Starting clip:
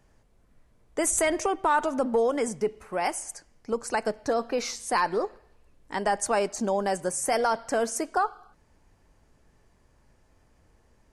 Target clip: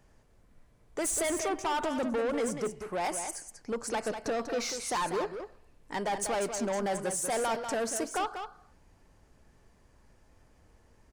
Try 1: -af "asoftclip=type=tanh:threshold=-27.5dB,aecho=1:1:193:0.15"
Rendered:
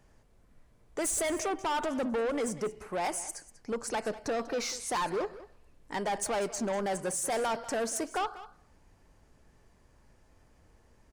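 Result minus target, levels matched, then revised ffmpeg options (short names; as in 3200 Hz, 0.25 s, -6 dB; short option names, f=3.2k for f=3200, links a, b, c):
echo-to-direct -8.5 dB
-af "asoftclip=type=tanh:threshold=-27.5dB,aecho=1:1:193:0.398"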